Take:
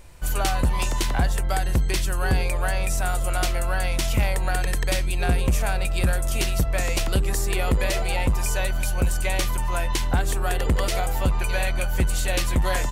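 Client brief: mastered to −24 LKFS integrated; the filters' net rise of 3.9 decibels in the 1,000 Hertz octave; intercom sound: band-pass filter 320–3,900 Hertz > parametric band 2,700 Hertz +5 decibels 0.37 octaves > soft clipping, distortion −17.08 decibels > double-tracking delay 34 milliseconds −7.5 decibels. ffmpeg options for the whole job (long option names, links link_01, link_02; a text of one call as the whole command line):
ffmpeg -i in.wav -filter_complex "[0:a]highpass=320,lowpass=3900,equalizer=frequency=1000:width_type=o:gain=5.5,equalizer=frequency=2700:width_type=o:width=0.37:gain=5,asoftclip=threshold=-18.5dB,asplit=2[link_01][link_02];[link_02]adelay=34,volume=-7.5dB[link_03];[link_01][link_03]amix=inputs=2:normalize=0,volume=4dB" out.wav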